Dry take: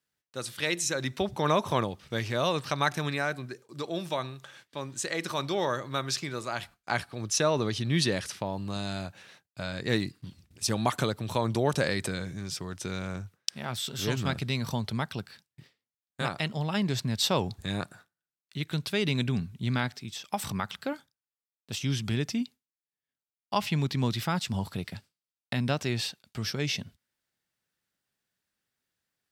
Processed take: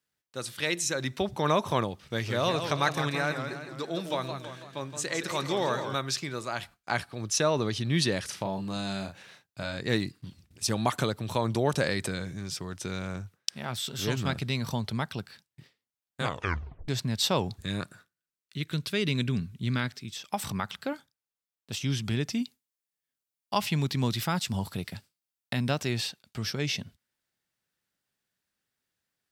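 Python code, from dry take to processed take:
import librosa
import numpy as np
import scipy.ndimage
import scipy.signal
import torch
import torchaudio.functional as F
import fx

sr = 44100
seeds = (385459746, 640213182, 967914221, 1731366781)

y = fx.echo_warbled(x, sr, ms=165, feedback_pct=53, rate_hz=2.8, cents=163, wet_db=-7.5, at=(1.98, 5.95))
y = fx.doubler(y, sr, ms=36.0, db=-6.0, at=(8.25, 9.77))
y = fx.peak_eq(y, sr, hz=780.0, db=-9.5, octaves=0.5, at=(17.57, 20.19))
y = fx.high_shelf(y, sr, hz=fx.line((22.32, 4700.0), (26.0, 9500.0)), db=6.5, at=(22.32, 26.0), fade=0.02)
y = fx.edit(y, sr, fx.tape_stop(start_s=16.21, length_s=0.67), tone=tone)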